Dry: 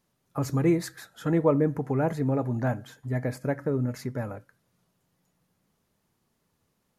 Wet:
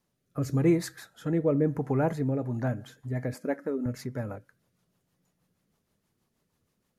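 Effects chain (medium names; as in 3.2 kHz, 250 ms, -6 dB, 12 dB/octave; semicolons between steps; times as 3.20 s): rotary cabinet horn 0.9 Hz, later 6.3 Hz, at 2.19 s; 3.34–3.86 s: brick-wall FIR high-pass 170 Hz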